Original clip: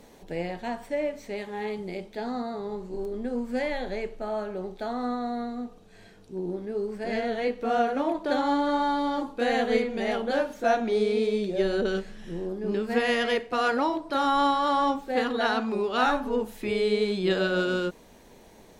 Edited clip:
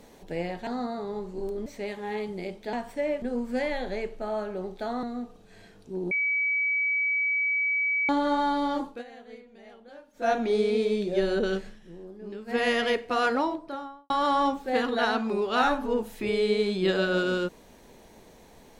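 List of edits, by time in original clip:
0.67–1.16 swap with 2.23–3.22
5.03–5.45 cut
6.53–8.51 bleep 2280 Hz -23 dBFS
9.26–10.75 dip -22 dB, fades 0.20 s
12.08–13.03 dip -11 dB, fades 0.14 s
13.7–14.52 studio fade out

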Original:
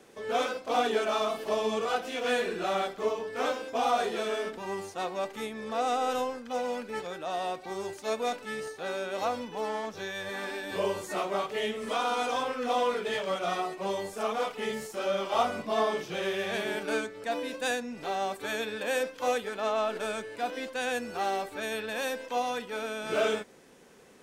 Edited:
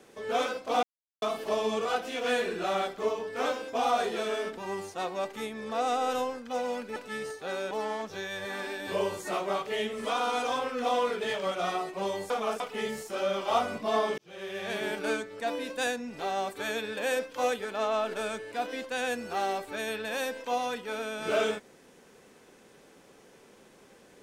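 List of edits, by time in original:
0.83–1.22 mute
6.96–8.33 cut
9.08–9.55 cut
14.14–14.44 reverse
16.02–16.69 fade in

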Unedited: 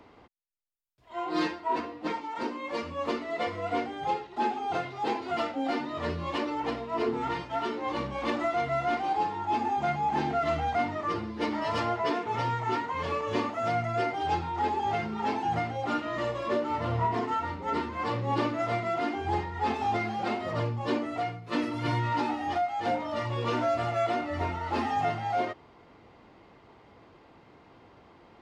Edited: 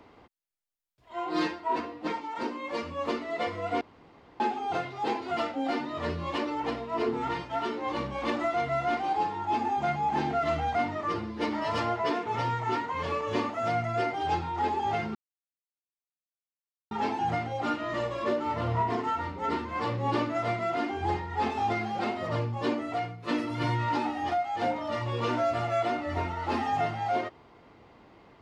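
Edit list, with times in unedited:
3.81–4.4 room tone
15.15 insert silence 1.76 s

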